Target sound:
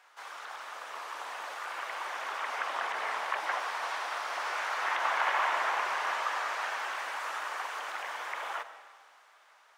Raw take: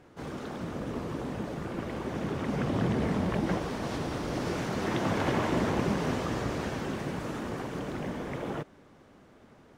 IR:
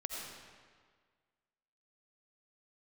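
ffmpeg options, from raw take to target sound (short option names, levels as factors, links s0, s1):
-filter_complex "[0:a]acrossover=split=2600[s0][s1];[s1]acompressor=threshold=0.002:ratio=4:attack=1:release=60[s2];[s0][s2]amix=inputs=2:normalize=0,asplit=2[s3][s4];[1:a]atrim=start_sample=2205,lowshelf=f=360:g=8.5[s5];[s4][s5]afir=irnorm=-1:irlink=0,volume=0.376[s6];[s3][s6]amix=inputs=2:normalize=0,dynaudnorm=f=240:g=9:m=1.58,highpass=f=900:w=0.5412,highpass=f=900:w=1.3066,volume=1.19"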